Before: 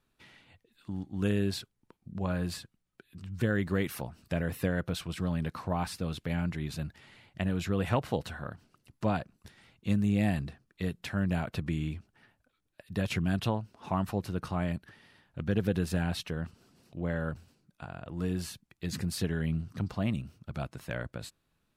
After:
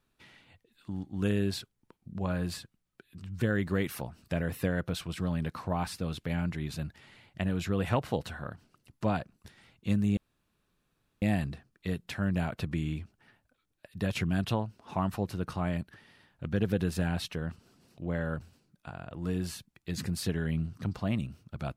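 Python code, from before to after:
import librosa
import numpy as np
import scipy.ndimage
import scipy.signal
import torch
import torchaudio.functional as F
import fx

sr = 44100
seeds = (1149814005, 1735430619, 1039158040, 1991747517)

y = fx.edit(x, sr, fx.insert_room_tone(at_s=10.17, length_s=1.05), tone=tone)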